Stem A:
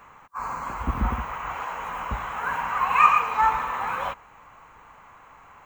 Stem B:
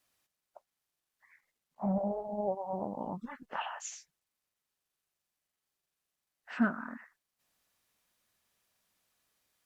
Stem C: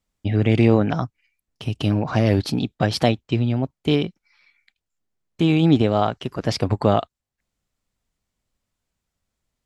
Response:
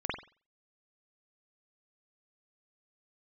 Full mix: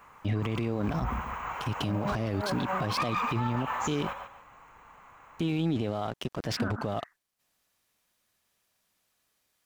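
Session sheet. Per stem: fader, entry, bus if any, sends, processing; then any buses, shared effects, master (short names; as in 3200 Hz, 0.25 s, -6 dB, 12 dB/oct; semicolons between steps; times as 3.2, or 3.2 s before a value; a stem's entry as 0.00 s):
-4.5 dB, 0.00 s, no send, echo send -8.5 dB, soft clip -13.5 dBFS, distortion -14 dB
+2.5 dB, 0.00 s, no send, no echo send, dry
+1.0 dB, 0.00 s, no send, no echo send, crossover distortion -37.5 dBFS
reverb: off
echo: feedback echo 0.142 s, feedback 26%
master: limiter -20.5 dBFS, peak gain reduction 18 dB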